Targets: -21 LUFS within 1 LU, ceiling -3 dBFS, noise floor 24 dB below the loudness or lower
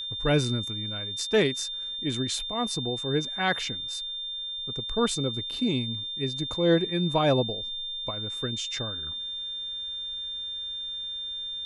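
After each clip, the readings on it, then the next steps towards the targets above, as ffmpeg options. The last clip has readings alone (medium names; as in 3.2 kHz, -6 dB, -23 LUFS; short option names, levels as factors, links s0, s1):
steady tone 3.6 kHz; tone level -32 dBFS; loudness -28.0 LUFS; peak level -12.0 dBFS; loudness target -21.0 LUFS
-> -af "bandreject=f=3600:w=30"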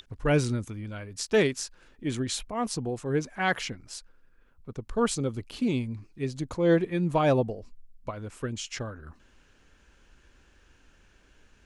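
steady tone not found; loudness -29.0 LUFS; peak level -13.0 dBFS; loudness target -21.0 LUFS
-> -af "volume=2.51"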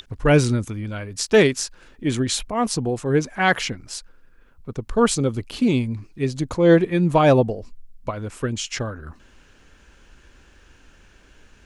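loudness -21.0 LUFS; peak level -5.0 dBFS; noise floor -53 dBFS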